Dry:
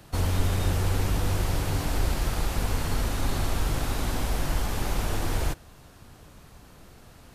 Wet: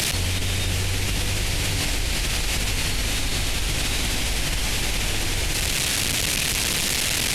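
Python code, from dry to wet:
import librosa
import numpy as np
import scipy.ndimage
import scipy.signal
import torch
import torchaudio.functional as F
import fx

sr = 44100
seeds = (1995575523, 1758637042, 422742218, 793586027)

p1 = fx.delta_mod(x, sr, bps=64000, step_db=-40.0)
p2 = fx.high_shelf_res(p1, sr, hz=1700.0, db=10.0, q=1.5)
p3 = p2 + fx.echo_single(p2, sr, ms=247, db=-20.5, dry=0)
p4 = fx.env_flatten(p3, sr, amount_pct=100)
y = F.gain(torch.from_numpy(p4), -5.0).numpy()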